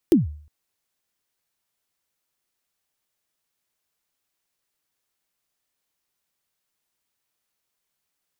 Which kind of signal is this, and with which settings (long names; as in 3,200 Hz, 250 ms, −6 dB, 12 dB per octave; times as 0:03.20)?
synth kick length 0.36 s, from 380 Hz, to 75 Hz, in 150 ms, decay 0.50 s, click on, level −8.5 dB